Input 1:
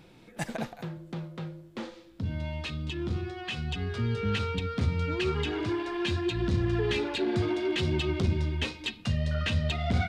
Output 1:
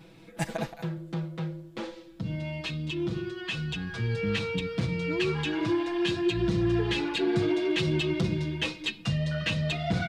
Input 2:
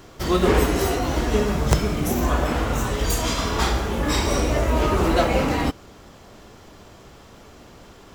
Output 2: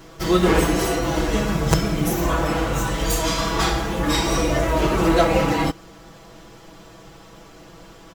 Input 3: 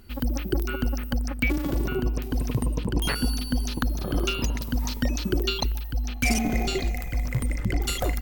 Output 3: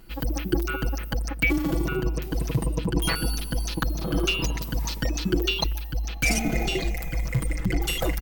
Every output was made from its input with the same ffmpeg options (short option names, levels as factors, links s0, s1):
-af "aecho=1:1:6.1:0.98,volume=0.891"